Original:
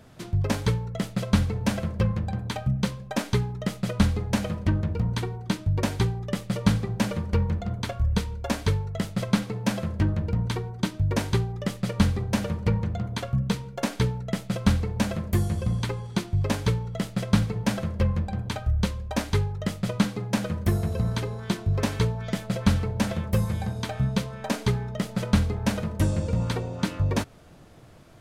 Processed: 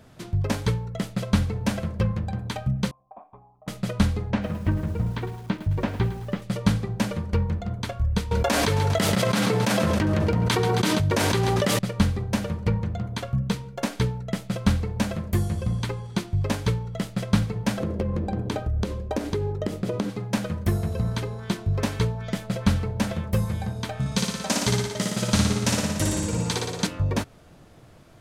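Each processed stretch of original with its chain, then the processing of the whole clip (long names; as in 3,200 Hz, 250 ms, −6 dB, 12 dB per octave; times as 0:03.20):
0:02.91–0:03.68: amplitude modulation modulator 150 Hz, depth 35% + formant resonators in series a
0:04.31–0:06.42: low-pass filter 2,700 Hz + feedback echo at a low word length 107 ms, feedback 55%, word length 7 bits, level −12 dB
0:08.31–0:11.79: high-pass filter 330 Hz 6 dB per octave + repeating echo 134 ms, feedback 57%, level −17 dB + envelope flattener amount 100%
0:17.80–0:20.10: parametric band 360 Hz +15 dB 1.4 octaves + downward compressor 10 to 1, threshold −21 dBFS
0:24.00–0:26.87: high-pass filter 110 Hz 6 dB per octave + parametric band 7,000 Hz +11.5 dB 1.7 octaves + flutter between parallel walls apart 10 metres, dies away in 1.2 s
whole clip: no processing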